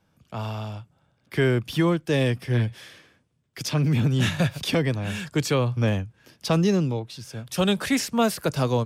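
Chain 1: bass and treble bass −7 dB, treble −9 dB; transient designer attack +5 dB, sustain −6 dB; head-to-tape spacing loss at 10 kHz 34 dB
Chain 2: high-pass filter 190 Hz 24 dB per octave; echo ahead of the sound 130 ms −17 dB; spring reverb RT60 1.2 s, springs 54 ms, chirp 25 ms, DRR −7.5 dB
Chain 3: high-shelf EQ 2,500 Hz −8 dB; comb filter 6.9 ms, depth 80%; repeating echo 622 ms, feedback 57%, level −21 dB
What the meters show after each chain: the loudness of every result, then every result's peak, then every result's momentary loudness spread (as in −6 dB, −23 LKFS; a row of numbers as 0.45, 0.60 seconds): −28.0, −18.5, −22.0 LKFS; −9.5, −3.0, −6.5 dBFS; 13, 15, 18 LU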